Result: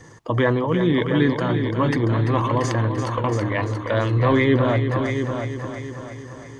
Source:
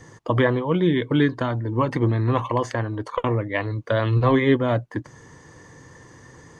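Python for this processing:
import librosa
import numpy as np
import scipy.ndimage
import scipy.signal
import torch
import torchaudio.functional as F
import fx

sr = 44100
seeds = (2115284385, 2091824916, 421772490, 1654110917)

p1 = fx.transient(x, sr, attack_db=-2, sustain_db=7)
y = p1 + fx.echo_heads(p1, sr, ms=341, heads='first and second', feedback_pct=46, wet_db=-9.0, dry=0)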